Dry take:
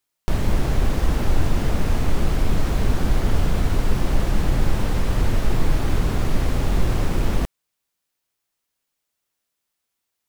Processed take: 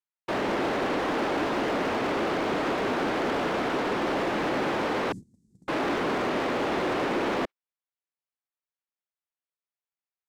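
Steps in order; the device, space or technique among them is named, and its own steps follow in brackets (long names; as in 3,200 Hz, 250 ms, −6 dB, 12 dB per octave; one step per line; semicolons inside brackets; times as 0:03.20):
0:05.12–0:05.68: elliptic band-stop filter 200–7,800 Hz, stop band 50 dB
walkie-talkie (band-pass filter 500–2,600 Hz; hard clipping −33.5 dBFS, distortion −10 dB; noise gate −44 dBFS, range −22 dB)
dynamic equaliser 290 Hz, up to +7 dB, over −54 dBFS, Q 1.1
level +7 dB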